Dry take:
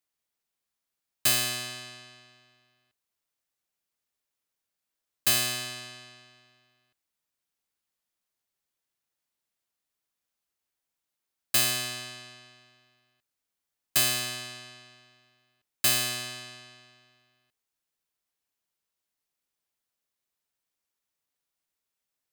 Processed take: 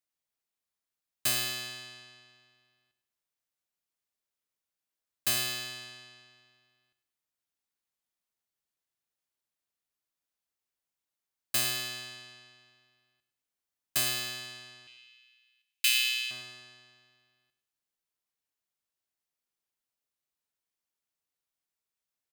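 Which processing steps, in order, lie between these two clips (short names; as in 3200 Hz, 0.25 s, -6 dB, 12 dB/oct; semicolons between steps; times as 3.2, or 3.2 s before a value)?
14.87–16.31 resonant high-pass 2600 Hz, resonance Q 3.3; feedback echo 0.103 s, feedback 38%, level -12.5 dB; gain -5 dB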